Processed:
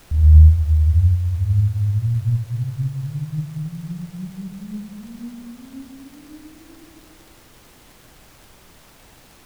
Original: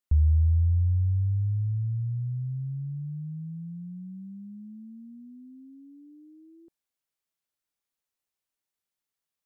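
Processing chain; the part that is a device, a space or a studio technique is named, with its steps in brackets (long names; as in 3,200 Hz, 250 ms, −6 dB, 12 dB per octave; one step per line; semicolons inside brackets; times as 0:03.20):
four-comb reverb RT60 2.7 s, combs from 26 ms, DRR −9 dB
record under a worn stylus (stylus tracing distortion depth 0.42 ms; surface crackle; pink noise bed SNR 29 dB)
level −1 dB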